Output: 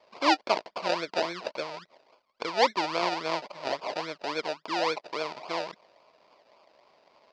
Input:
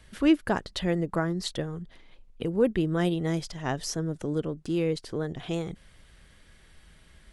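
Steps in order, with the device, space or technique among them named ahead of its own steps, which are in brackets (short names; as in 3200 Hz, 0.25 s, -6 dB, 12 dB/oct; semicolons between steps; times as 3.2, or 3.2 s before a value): circuit-bent sampling toy (decimation with a swept rate 32×, swing 60% 3.6 Hz; speaker cabinet 520–5300 Hz, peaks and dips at 620 Hz +8 dB, 1000 Hz +9 dB, 1600 Hz -5 dB, 2300 Hz +5 dB, 4700 Hz +9 dB)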